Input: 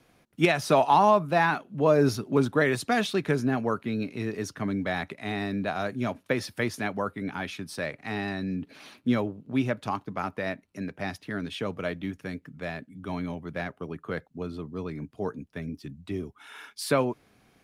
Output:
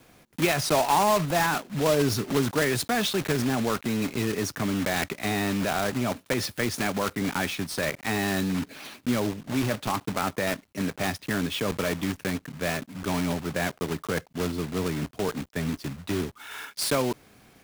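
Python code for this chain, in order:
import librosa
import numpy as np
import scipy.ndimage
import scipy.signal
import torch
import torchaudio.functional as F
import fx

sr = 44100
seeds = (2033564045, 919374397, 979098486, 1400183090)

p1 = fx.block_float(x, sr, bits=3)
p2 = fx.over_compress(p1, sr, threshold_db=-32.0, ratio=-1.0)
p3 = p1 + (p2 * librosa.db_to_amplitude(1.0))
y = p3 * librosa.db_to_amplitude(-3.0)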